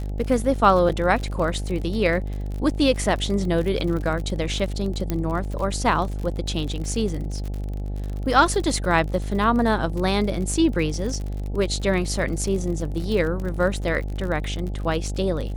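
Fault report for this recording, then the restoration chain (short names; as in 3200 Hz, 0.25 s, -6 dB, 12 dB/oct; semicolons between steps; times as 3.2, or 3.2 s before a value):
buzz 50 Hz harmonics 17 -28 dBFS
crackle 52/s -29 dBFS
0.89–0.9 gap 6.5 ms
5.1 pop -11 dBFS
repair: de-click; de-hum 50 Hz, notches 17; interpolate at 0.89, 6.5 ms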